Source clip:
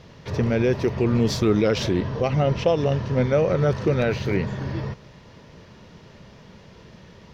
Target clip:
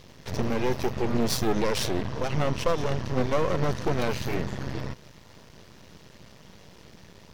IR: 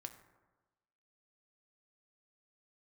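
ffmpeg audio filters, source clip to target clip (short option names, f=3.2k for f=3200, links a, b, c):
-af "aemphasis=mode=production:type=50fm,aeval=exprs='max(val(0),0)':c=same"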